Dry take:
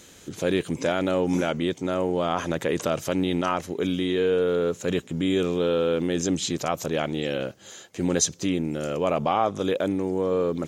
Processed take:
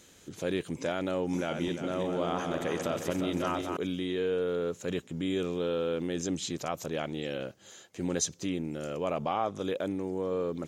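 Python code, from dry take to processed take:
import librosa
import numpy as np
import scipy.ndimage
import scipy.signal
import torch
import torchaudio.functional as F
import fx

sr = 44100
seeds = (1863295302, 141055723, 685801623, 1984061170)

y = fx.reverse_delay_fb(x, sr, ms=176, feedback_pct=64, wet_db=-5, at=(1.33, 3.77))
y = F.gain(torch.from_numpy(y), -7.5).numpy()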